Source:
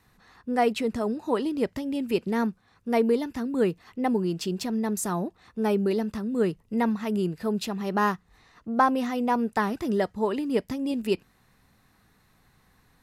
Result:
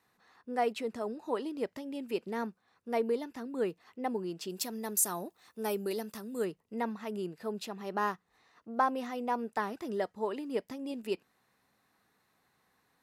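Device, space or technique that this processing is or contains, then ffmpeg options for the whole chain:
filter by subtraction: -filter_complex "[0:a]asplit=2[a][b];[b]lowpass=520,volume=-1[c];[a][c]amix=inputs=2:normalize=0,asplit=3[d][e][f];[d]afade=t=out:st=4.49:d=0.02[g];[e]aemphasis=mode=production:type=75fm,afade=t=in:st=4.49:d=0.02,afade=t=out:st=6.44:d=0.02[h];[f]afade=t=in:st=6.44:d=0.02[i];[g][h][i]amix=inputs=3:normalize=0,volume=-8.5dB"

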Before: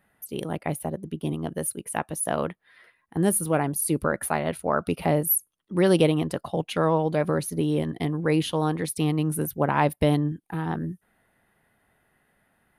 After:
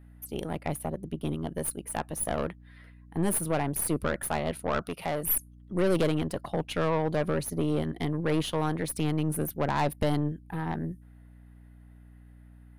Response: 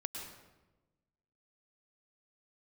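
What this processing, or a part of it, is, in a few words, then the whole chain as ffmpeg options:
valve amplifier with mains hum: -filter_complex "[0:a]aeval=exprs='(tanh(11.2*val(0)+0.6)-tanh(0.6))/11.2':c=same,aeval=exprs='val(0)+0.00316*(sin(2*PI*60*n/s)+sin(2*PI*2*60*n/s)/2+sin(2*PI*3*60*n/s)/3+sin(2*PI*4*60*n/s)/4+sin(2*PI*5*60*n/s)/5)':c=same,asettb=1/sr,asplit=3[a][b][c];[a]atrim=end=4.824[d];[b]atrim=start=4.82:end=5.23,asetpts=PTS-STARTPTS,afade=t=in:d=0.004:c=qsin,afade=t=out:st=0.406:d=0.004:c=qsin,lowshelf=f=430:g=-9[e];[c]atrim=start=5.226[f];[d][e]acrossfade=d=0.004:c1=hsin:c2=qsin[g];[g][f]acrossfade=d=0.004:c1=qsin:c2=hsin"

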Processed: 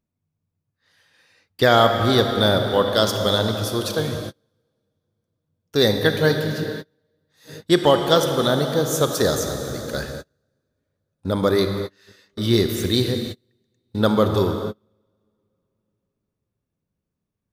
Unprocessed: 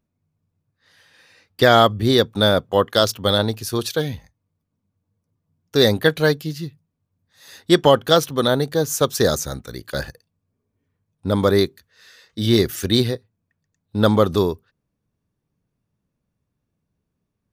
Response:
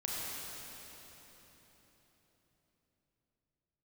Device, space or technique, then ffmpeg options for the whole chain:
keyed gated reverb: -filter_complex "[0:a]asplit=3[a][b][c];[1:a]atrim=start_sample=2205[d];[b][d]afir=irnorm=-1:irlink=0[e];[c]apad=whole_len=772877[f];[e][f]sidechaingate=range=-37dB:threshold=-44dB:ratio=16:detection=peak,volume=-4.5dB[g];[a][g]amix=inputs=2:normalize=0,volume=-5.5dB"

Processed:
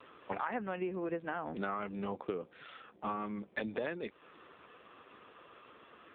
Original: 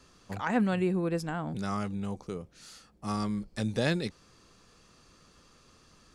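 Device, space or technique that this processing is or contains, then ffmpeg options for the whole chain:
voicemail: -filter_complex "[0:a]asplit=3[a][b][c];[a]afade=t=out:st=1.23:d=0.02[d];[b]highpass=f=110:w=0.5412,highpass=f=110:w=1.3066,afade=t=in:st=1.23:d=0.02,afade=t=out:st=1.77:d=0.02[e];[c]afade=t=in:st=1.77:d=0.02[f];[d][e][f]amix=inputs=3:normalize=0,highpass=360,lowpass=3k,acompressor=threshold=-44dB:ratio=10,volume=11.5dB" -ar 8000 -c:a libopencore_amrnb -b:a 5900

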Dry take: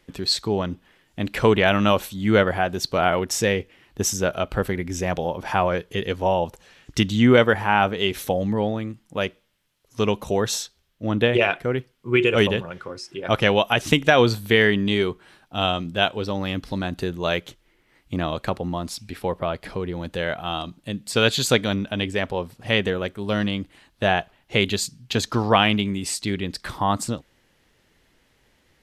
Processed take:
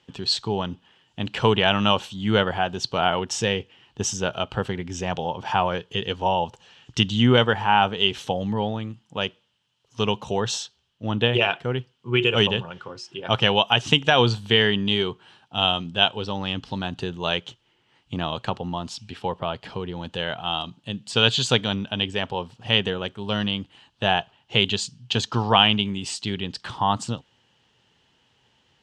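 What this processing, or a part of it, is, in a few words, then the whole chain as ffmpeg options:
car door speaker: -af "highpass=86,equalizer=f=120:t=q:w=4:g=5,equalizer=f=310:t=q:w=4:g=-5,equalizer=f=580:t=q:w=4:g=-4,equalizer=f=880:t=q:w=4:g=6,equalizer=f=2.1k:t=q:w=4:g=-6,equalizer=f=3k:t=q:w=4:g=10,lowpass=f=7.6k:w=0.5412,lowpass=f=7.6k:w=1.3066,volume=-2dB"

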